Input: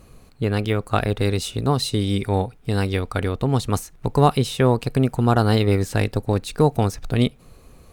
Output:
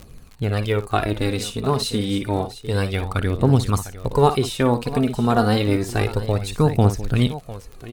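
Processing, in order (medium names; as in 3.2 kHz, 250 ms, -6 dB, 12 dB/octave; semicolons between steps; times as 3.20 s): multi-tap echo 57/703 ms -11.5/-14 dB; phaser 0.29 Hz, delay 4.9 ms, feedback 48%; crackle 52 per s -30 dBFS; trim -1 dB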